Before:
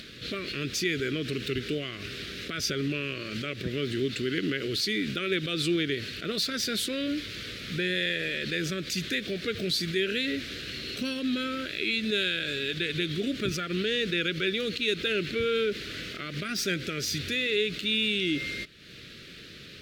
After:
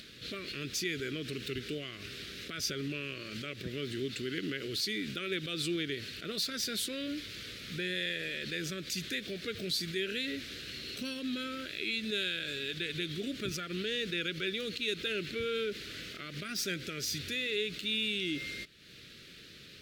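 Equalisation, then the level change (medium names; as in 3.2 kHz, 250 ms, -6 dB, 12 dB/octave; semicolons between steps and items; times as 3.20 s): treble shelf 4.9 kHz +6.5 dB; -7.5 dB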